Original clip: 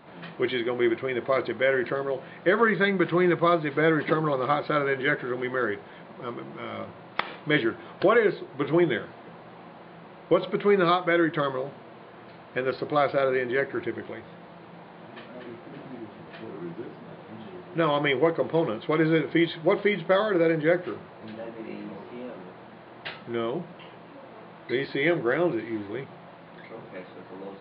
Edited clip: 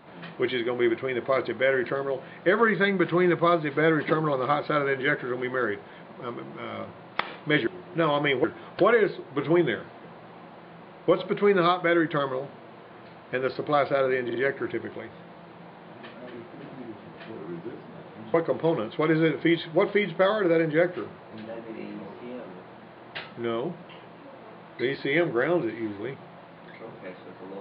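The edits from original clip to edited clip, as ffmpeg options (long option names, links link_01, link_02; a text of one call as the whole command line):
ffmpeg -i in.wav -filter_complex "[0:a]asplit=6[link_01][link_02][link_03][link_04][link_05][link_06];[link_01]atrim=end=7.672[link_07];[link_02]atrim=start=17.468:end=18.242[link_08];[link_03]atrim=start=7.668:end=13.532[link_09];[link_04]atrim=start=13.478:end=13.532[link_10];[link_05]atrim=start=13.478:end=17.472[link_11];[link_06]atrim=start=18.238[link_12];[link_07][link_08]acrossfade=duration=0.004:curve1=hsin:curve2=hsin[link_13];[link_13][link_09]acrossfade=duration=0.004:curve1=hsin:curve2=hsin[link_14];[link_14][link_10]acrossfade=duration=0.004:curve1=hsin:curve2=hsin[link_15];[link_15][link_11]acrossfade=duration=0.004:curve1=hsin:curve2=hsin[link_16];[link_16][link_12]acrossfade=duration=0.004:curve1=hsin:curve2=hsin" out.wav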